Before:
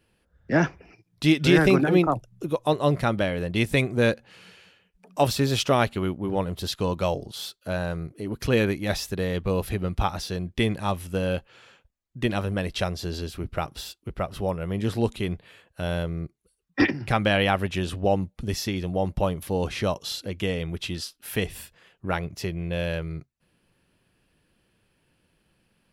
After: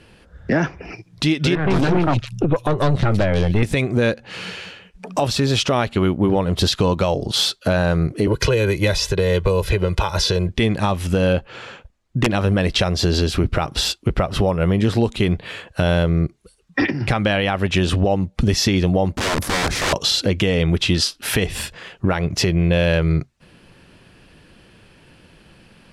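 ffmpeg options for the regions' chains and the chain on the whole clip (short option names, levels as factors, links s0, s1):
-filter_complex "[0:a]asettb=1/sr,asplit=3[s0][s1][s2];[s0]atrim=end=1.554[s3];[s1]atrim=start=1.55:end=3.63,asetpts=PTS-STARTPTS,afade=t=in:d=0.004:c=qsin,afade=t=out:st=2.076:d=0.004:c=qsin,equalizer=f=100:t=o:w=1.9:g=9.5,aeval=exprs='(tanh(12.6*val(0)+0.6)-tanh(0.6))/12.6':c=same,acrossover=split=2800[s4][s5];[s5]adelay=150[s6];[s4][s6]amix=inputs=2:normalize=0,atrim=end_sample=91728[s7];[s2]atrim=start=3.626[s8];[s3][s7]acrossfade=d=0.004:c1=hsin:c2=qsin[s9];[s9][s8]acrossfade=d=0.004:c1=qsin:c2=hsin,asettb=1/sr,asplit=3[s10][s11][s12];[s10]atrim=end=8.274[s13];[s11]atrim=start=8.27:end=10.49,asetpts=PTS-STARTPTS,afade=t=in:d=0.004:c=qsin,afade=t=out:st=2.216:d=0.004:c=qsin,aecho=1:1:2:0.83,atrim=end_sample=97902,acrossover=split=300|6900[s14][s15][s16];[s14]acompressor=threshold=0.02:ratio=4[s17];[s15]acompressor=threshold=0.0224:ratio=4[s18];[s16]acompressor=threshold=0.00398:ratio=4[s19];[s17][s18][s19]amix=inputs=3:normalize=0[s20];[s12]atrim=start=10.486[s21];[s13][s20]acrossfade=d=0.004:c1=hsin:c2=qsin[s22];[s22][s21]acrossfade=d=0.004:c1=qsin:c2=hsin,asettb=1/sr,asplit=3[s23][s24][s25];[s23]atrim=end=11.334[s26];[s24]atrim=start=11.33:end=12.34,asetpts=PTS-STARTPTS,afade=t=in:d=0.004:c=qsin,afade=t=out:st=1.006:d=0.004:c=qsin,lowpass=f=1500:p=1,aemphasis=mode=production:type=50kf,aeval=exprs='(mod(5.62*val(0)+1,2)-1)/5.62':c=same[s27];[s25]atrim=start=12.336[s28];[s26][s27]acrossfade=d=0.004:c1=hsin:c2=qsin[s29];[s29][s28]acrossfade=d=0.004:c1=qsin:c2=hsin,asettb=1/sr,asplit=3[s30][s31][s32];[s30]atrim=end=19.154[s33];[s31]atrim=start=19.15:end=19.93,asetpts=PTS-STARTPTS,afade=t=in:d=0.004:c=qsin,afade=t=out:st=0.776:d=0.004:c=qsin,equalizer=f=2900:t=o:w=1:g=-15,acompressor=threshold=0.0178:ratio=2:attack=3.2:release=140:knee=1:detection=peak,aeval=exprs='(mod(47.3*val(0)+1,2)-1)/47.3':c=same[s34];[s32]atrim=start=19.926[s35];[s33][s34]acrossfade=d=0.004:c1=hsin:c2=qsin[s36];[s36][s35]acrossfade=d=0.004:c1=qsin:c2=hsin,lowpass=7800,acompressor=threshold=0.0251:ratio=12,alimiter=level_in=20:limit=0.891:release=50:level=0:latency=1,volume=0.447"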